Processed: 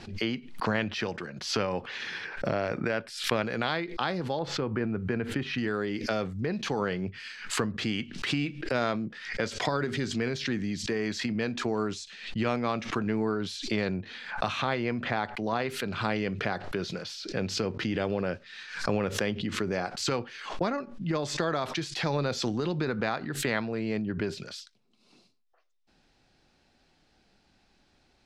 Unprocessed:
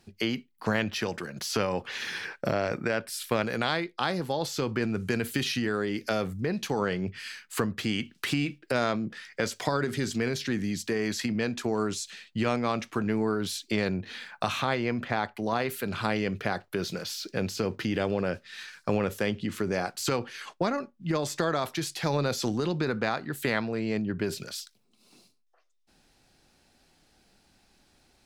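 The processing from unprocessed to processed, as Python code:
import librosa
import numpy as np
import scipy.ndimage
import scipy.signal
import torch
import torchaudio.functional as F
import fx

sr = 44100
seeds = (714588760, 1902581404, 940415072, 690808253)

y = fx.lowpass(x, sr, hz=fx.steps((0.0, 4600.0), (4.39, 1800.0), (5.58, 5200.0)), slope=12)
y = fx.pre_swell(y, sr, db_per_s=89.0)
y = y * 10.0 ** (-1.5 / 20.0)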